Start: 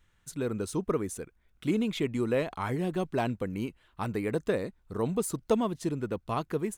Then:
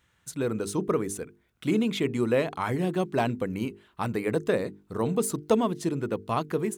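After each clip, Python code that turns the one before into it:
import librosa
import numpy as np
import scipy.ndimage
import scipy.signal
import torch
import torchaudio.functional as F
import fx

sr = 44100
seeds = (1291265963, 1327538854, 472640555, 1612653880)

y = scipy.signal.sosfilt(scipy.signal.butter(2, 86.0, 'highpass', fs=sr, output='sos'), x)
y = fx.hum_notches(y, sr, base_hz=50, count=9)
y = y * 10.0 ** (4.0 / 20.0)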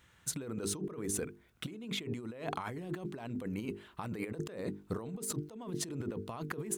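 y = fx.over_compress(x, sr, threshold_db=-36.0, ratio=-1.0)
y = y * 10.0 ** (-4.0 / 20.0)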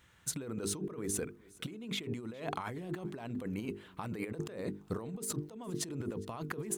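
y = fx.echo_feedback(x, sr, ms=410, feedback_pct=34, wet_db=-23.5)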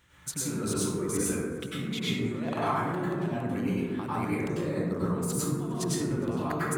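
y = fx.rev_plate(x, sr, seeds[0], rt60_s=1.4, hf_ratio=0.35, predelay_ms=85, drr_db=-9.5)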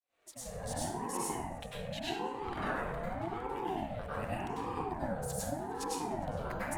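y = fx.fade_in_head(x, sr, length_s=0.79)
y = fx.ring_lfo(y, sr, carrier_hz=480.0, swing_pct=35, hz=0.85)
y = y * 10.0 ** (-4.5 / 20.0)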